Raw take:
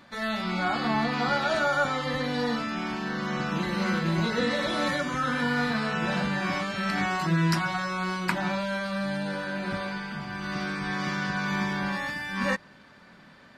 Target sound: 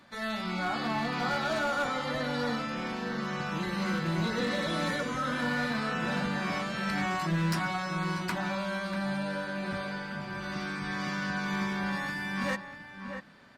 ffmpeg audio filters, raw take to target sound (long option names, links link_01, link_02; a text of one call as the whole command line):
ffmpeg -i in.wav -filter_complex "[0:a]equalizer=frequency=11000:width=0.74:gain=3,acrossover=split=120[link_01][link_02];[link_02]asoftclip=type=hard:threshold=-21.5dB[link_03];[link_01][link_03]amix=inputs=2:normalize=0,asplit=2[link_04][link_05];[link_05]adelay=641.4,volume=-7dB,highshelf=frequency=4000:gain=-14.4[link_06];[link_04][link_06]amix=inputs=2:normalize=0,volume=-4dB" out.wav